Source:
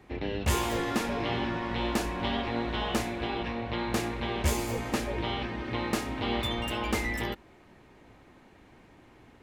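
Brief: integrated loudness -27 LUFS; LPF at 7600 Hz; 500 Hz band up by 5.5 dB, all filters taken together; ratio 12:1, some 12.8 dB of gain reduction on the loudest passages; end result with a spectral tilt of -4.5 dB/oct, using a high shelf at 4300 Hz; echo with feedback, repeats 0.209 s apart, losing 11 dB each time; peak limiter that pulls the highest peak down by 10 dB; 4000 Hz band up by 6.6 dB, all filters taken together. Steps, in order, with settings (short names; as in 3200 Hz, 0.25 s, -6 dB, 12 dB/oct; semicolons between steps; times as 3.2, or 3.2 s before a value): LPF 7600 Hz; bell 500 Hz +7 dB; bell 4000 Hz +7 dB; high shelf 4300 Hz +3.5 dB; compressor 12:1, threshold -33 dBFS; limiter -30 dBFS; feedback echo 0.209 s, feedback 28%, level -11 dB; gain +12 dB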